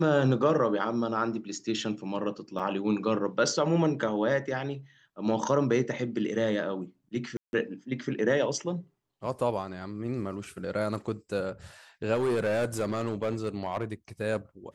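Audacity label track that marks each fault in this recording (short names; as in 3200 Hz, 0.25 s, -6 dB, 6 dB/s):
2.590000	2.600000	gap 6 ms
7.370000	7.530000	gap 0.161 s
12.140000	13.930000	clipped -23.5 dBFS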